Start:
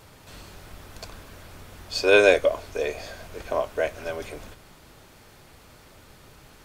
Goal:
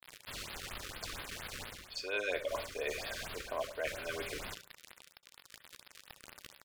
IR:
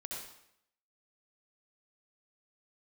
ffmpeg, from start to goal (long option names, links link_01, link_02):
-filter_complex "[0:a]acrusher=bits=6:mix=0:aa=0.000001,tiltshelf=frequency=1200:gain=-7,areverse,acompressor=threshold=-37dB:ratio=5,areverse,aemphasis=mode=reproduction:type=50kf,asplit=2[link_01][link_02];[link_02]adelay=64,lowpass=frequency=2400:poles=1,volume=-14dB,asplit=2[link_03][link_04];[link_04]adelay=64,lowpass=frequency=2400:poles=1,volume=0.36,asplit=2[link_05][link_06];[link_06]adelay=64,lowpass=frequency=2400:poles=1,volume=0.36[link_07];[link_01][link_03][link_05][link_07]amix=inputs=4:normalize=0,asplit=2[link_08][link_09];[1:a]atrim=start_sample=2205,atrim=end_sample=3528[link_10];[link_09][link_10]afir=irnorm=-1:irlink=0,volume=-4dB[link_11];[link_08][link_11]amix=inputs=2:normalize=0,afftfilt=real='re*(1-between(b*sr/1024,730*pow(7500/730,0.5+0.5*sin(2*PI*4.3*pts/sr))/1.41,730*pow(7500/730,0.5+0.5*sin(2*PI*4.3*pts/sr))*1.41))':imag='im*(1-between(b*sr/1024,730*pow(7500/730,0.5+0.5*sin(2*PI*4.3*pts/sr))/1.41,730*pow(7500/730,0.5+0.5*sin(2*PI*4.3*pts/sr))*1.41))':win_size=1024:overlap=0.75,volume=1dB"